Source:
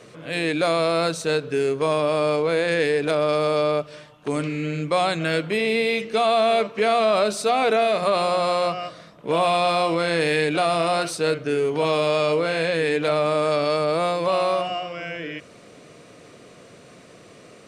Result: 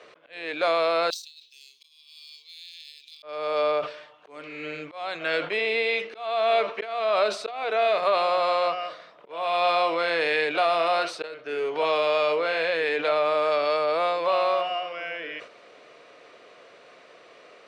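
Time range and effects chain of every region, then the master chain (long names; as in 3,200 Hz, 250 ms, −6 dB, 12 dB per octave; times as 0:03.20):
0:01.10–0:03.23: inverse Chebyshev high-pass filter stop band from 1,600 Hz, stop band 50 dB + compressor whose output falls as the input rises −41 dBFS, ratio −0.5 + bad sample-rate conversion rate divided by 2×, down none, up hold
whole clip: volume swells 403 ms; three-way crossover with the lows and the highs turned down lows −23 dB, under 420 Hz, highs −21 dB, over 4,700 Hz; level that may fall only so fast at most 130 dB per second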